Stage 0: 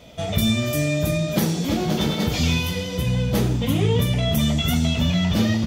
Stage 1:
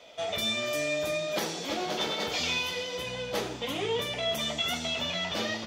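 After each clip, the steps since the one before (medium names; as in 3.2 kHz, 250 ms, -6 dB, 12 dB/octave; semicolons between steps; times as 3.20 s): three-band isolator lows -23 dB, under 390 Hz, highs -12 dB, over 7.2 kHz; trim -2.5 dB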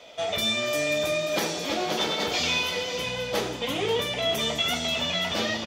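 delay 536 ms -11 dB; trim +4 dB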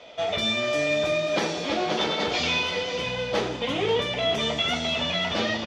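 distance through air 110 m; trim +2.5 dB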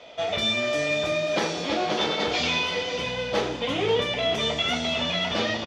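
doubling 29 ms -11.5 dB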